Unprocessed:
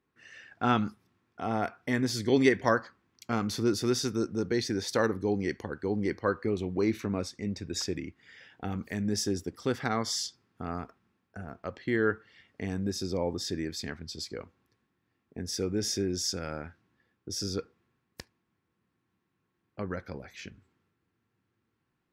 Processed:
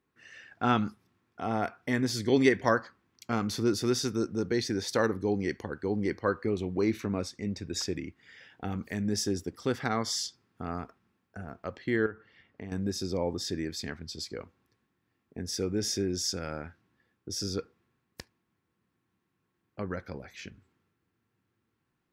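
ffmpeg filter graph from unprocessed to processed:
-filter_complex "[0:a]asettb=1/sr,asplit=3[a][b][c];[a]atrim=end=12.064[d];[b]atrim=start=12.06:end=12.72,asetpts=PTS-STARTPTS,afade=t=in:d=0.004:c=qsin,afade=t=out:st=0.656:d=0.004:c=qsin,aemphasis=mode=reproduction:type=75fm,acompressor=threshold=-39dB:ratio=2.5:attack=3.2:release=140:knee=1:detection=peak[e];[c]atrim=start=12.716[f];[d][e]acrossfade=d=0.004:c1=hsin:c2=qsin[g];[g][f]acrossfade=d=0.004:c1=qsin:c2=hsin"

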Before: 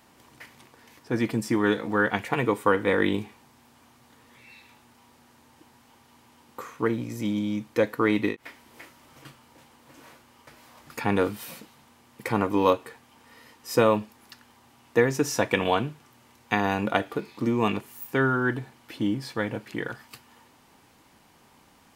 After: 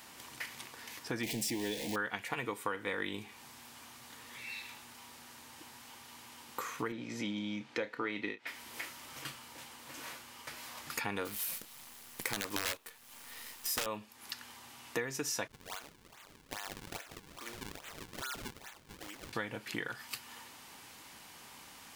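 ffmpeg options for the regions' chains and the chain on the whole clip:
-filter_complex "[0:a]asettb=1/sr,asplit=3[a][b][c];[a]atrim=end=1.234[d];[b]atrim=start=1.23:end=1.96,asetpts=PTS-STARTPTS,afade=t=in:d=0.004:c=qsin,afade=t=out:st=0.726:d=0.004:c=qsin,aeval=exprs='val(0)+0.5*0.0447*sgn(val(0))':c=same,asuperstop=centerf=1300:order=4:qfactor=1.1[e];[c]atrim=start=1.956[f];[d][e]acrossfade=d=0.004:c1=hsin:c2=qsin[g];[g][f]acrossfade=d=0.004:c1=qsin:c2=hsin,asettb=1/sr,asplit=3[h][i][j];[h]atrim=end=6.924[k];[i]atrim=start=6.92:end=8.47,asetpts=PTS-STARTPTS,afade=t=in:d=0.004:c=qsin,afade=t=out:st=1.546:d=0.004:c=qsin,highpass=140,lowpass=4.2k,bandreject=f=1.1k:w=8.5,asplit=2[l][m];[m]adelay=30,volume=-12dB[n];[l][n]amix=inputs=2:normalize=0,atrim=end_sample=68355[o];[j]atrim=start=8.466[p];[k][o]acrossfade=d=0.004:c1=hsin:c2=qsin[q];[q][p]acrossfade=d=0.004:c1=qsin:c2=hsin,asettb=1/sr,asplit=3[r][s][t];[r]atrim=end=11.254[u];[s]atrim=start=11.25:end=13.86,asetpts=PTS-STARTPTS,afade=t=in:d=0.004:c=qsin,afade=t=out:st=2.606:d=0.004:c=qsin,equalizer=f=12k:t=o:w=0.88:g=8.5,aeval=exprs='(mod(5.01*val(0)+1,2)-1)/5.01':c=same,acrusher=bits=7:dc=4:mix=0:aa=0.000001[v];[t]atrim=start=13.856[w];[u][v]acrossfade=d=0.004:c1=hsin:c2=qsin[x];[x][w]acrossfade=d=0.004:c1=qsin:c2=hsin,asettb=1/sr,asplit=3[y][z][aa];[y]atrim=end=15.474[ab];[z]atrim=start=15.47:end=19.33,asetpts=PTS-STARTPTS,afade=t=in:d=0.004:c=qsin,afade=t=out:st=3.856:d=0.004:c=qsin,highpass=880,acompressor=threshold=-49dB:ratio=2.5:attack=3.2:release=140:knee=1:detection=peak,acrusher=samples=40:mix=1:aa=0.000001:lfo=1:lforange=64:lforate=2.4[ac];[aa]atrim=start=19.326[ad];[ab][ac]acrossfade=d=0.004:c1=hsin:c2=qsin[ae];[ae][ad]acrossfade=d=0.004:c1=qsin:c2=hsin,tiltshelf=f=1.1k:g=-6,acompressor=threshold=-40dB:ratio=4,volume=3.5dB"

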